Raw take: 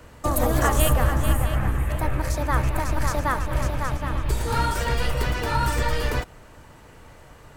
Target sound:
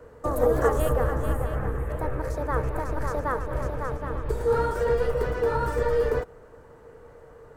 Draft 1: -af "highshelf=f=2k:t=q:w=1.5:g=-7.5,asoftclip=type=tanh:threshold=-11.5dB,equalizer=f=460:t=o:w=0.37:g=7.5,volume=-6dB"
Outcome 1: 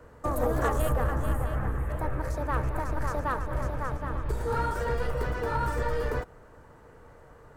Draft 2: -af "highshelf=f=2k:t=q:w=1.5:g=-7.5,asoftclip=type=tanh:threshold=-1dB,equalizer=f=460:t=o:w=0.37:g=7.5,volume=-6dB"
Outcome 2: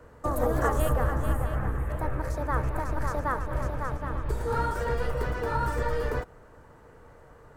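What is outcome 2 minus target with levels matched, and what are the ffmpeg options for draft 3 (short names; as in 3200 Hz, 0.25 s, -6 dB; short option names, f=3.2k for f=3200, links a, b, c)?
500 Hz band -4.0 dB
-af "highshelf=f=2k:t=q:w=1.5:g=-7.5,asoftclip=type=tanh:threshold=-1dB,equalizer=f=460:t=o:w=0.37:g=17,volume=-6dB"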